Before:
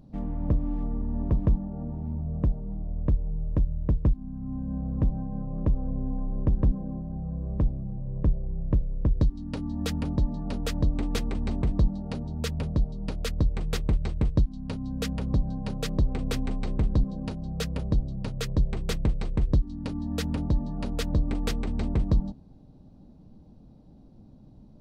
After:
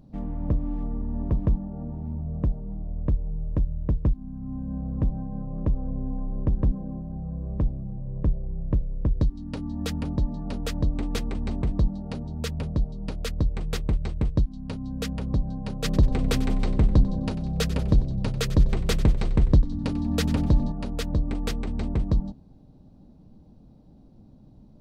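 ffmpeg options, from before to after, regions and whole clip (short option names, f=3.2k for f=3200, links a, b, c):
-filter_complex "[0:a]asettb=1/sr,asplit=3[a][b][c];[a]atrim=end=15.844[d];[b]atrim=start=15.84:end=20.72,asetpts=PTS-STARTPTS,afade=t=in:d=0.004:c=qsin,afade=t=out:st=4.876:d=0.004:c=qsin,acontrast=27,asplit=5[e][f][g][h][i];[f]adelay=94,afreqshift=-68,volume=-15dB[j];[g]adelay=188,afreqshift=-136,volume=-21.9dB[k];[h]adelay=282,afreqshift=-204,volume=-28.9dB[l];[i]adelay=376,afreqshift=-272,volume=-35.8dB[m];[e][j][k][l][m]amix=inputs=5:normalize=0,atrim=end_sample=215208[n];[c]atrim=start=20.716[o];[d][n]acrossfade=d=0.004:c1=hsin:c2=qsin[p];[p][o]acrossfade=d=0.004:c1=qsin:c2=hsin"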